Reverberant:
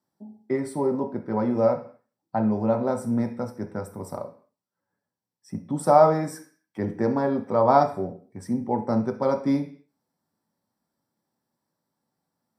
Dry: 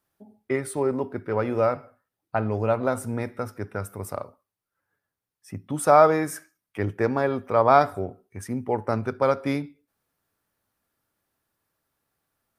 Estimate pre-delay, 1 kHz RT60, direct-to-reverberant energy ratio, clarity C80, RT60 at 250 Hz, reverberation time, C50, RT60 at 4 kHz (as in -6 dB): 3 ms, 0.45 s, 3.5 dB, 17.0 dB, 0.55 s, 0.45 s, 12.0 dB, n/a